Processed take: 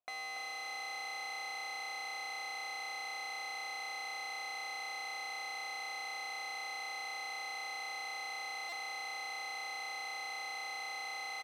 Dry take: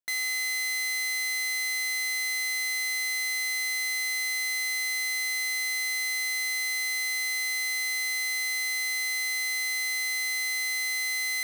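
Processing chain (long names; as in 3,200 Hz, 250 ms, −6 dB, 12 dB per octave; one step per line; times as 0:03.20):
high-shelf EQ 2,200 Hz −7.5 dB
in parallel at +0.5 dB: gain into a clipping stage and back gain 35.5 dB
on the sum: formant filter a
echo with shifted repeats 284 ms, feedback 59%, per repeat +32 Hz, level −8 dB
on a send at −15 dB: convolution reverb RT60 4.5 s, pre-delay 4 ms
on the sum: buffer that repeats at 0:08.69, samples 128, times 10
level +11 dB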